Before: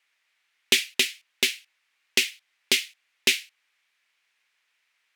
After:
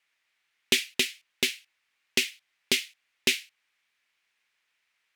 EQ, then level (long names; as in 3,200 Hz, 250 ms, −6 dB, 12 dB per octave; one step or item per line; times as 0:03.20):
low-shelf EQ 260 Hz +10.5 dB
−3.5 dB